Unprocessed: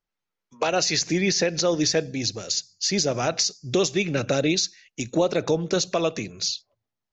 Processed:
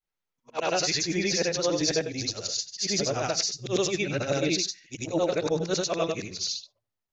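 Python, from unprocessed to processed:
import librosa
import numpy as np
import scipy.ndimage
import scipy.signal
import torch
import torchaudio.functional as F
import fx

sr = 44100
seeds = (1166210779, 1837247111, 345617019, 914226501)

y = fx.frame_reverse(x, sr, frame_ms=203.0)
y = fx.peak_eq(y, sr, hz=230.0, db=-4.5, octaves=0.44)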